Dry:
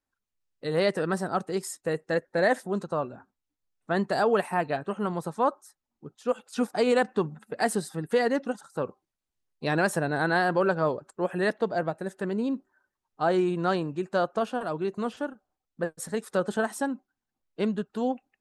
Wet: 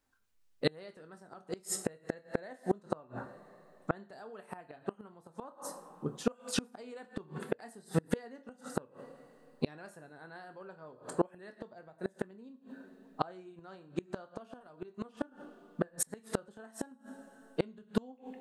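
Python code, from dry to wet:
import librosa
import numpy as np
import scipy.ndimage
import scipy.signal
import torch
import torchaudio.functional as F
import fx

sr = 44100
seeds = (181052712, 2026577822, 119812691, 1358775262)

y = fx.chorus_voices(x, sr, voices=6, hz=0.54, base_ms=25, depth_ms=2.6, mix_pct=20)
y = fx.rev_double_slope(y, sr, seeds[0], early_s=0.53, late_s=3.6, knee_db=-28, drr_db=8.5)
y = fx.gate_flip(y, sr, shuts_db=-24.0, range_db=-32)
y = y * librosa.db_to_amplitude(8.5)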